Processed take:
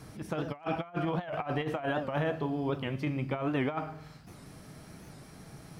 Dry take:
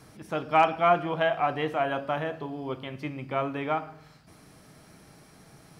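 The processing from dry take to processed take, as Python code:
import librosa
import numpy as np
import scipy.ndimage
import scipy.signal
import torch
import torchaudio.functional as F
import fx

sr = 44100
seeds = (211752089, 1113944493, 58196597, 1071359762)

y = fx.low_shelf(x, sr, hz=250.0, db=6.0)
y = fx.over_compress(y, sr, threshold_db=-29.0, ratio=-0.5)
y = fx.record_warp(y, sr, rpm=78.0, depth_cents=160.0)
y = y * librosa.db_to_amplitude(-2.5)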